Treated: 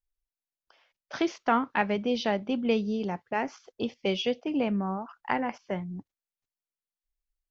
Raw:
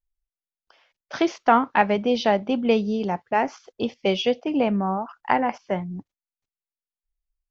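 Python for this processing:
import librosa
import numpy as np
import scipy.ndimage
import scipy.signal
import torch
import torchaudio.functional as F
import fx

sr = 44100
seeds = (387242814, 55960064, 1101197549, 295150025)

y = fx.dynamic_eq(x, sr, hz=750.0, q=1.2, threshold_db=-32.0, ratio=4.0, max_db=-5)
y = F.gain(torch.from_numpy(y), -4.5).numpy()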